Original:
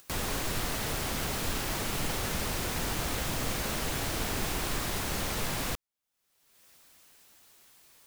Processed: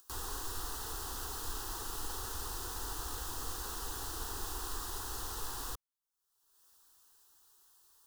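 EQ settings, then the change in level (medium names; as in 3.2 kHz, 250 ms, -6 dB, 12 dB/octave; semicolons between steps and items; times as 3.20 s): peaking EQ 230 Hz -9.5 dB 1.4 oct; static phaser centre 600 Hz, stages 6; -5.0 dB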